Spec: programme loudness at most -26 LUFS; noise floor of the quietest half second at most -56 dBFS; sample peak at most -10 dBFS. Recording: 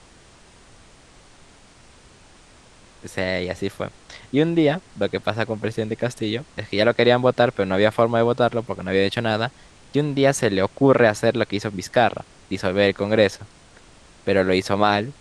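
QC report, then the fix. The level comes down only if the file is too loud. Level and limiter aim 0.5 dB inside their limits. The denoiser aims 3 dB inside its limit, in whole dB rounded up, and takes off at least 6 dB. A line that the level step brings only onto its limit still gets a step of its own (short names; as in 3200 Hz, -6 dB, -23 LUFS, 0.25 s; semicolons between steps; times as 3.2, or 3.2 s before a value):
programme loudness -21.0 LUFS: fail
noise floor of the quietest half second -50 dBFS: fail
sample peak -3.0 dBFS: fail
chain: denoiser 6 dB, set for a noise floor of -50 dBFS; gain -5.5 dB; limiter -10.5 dBFS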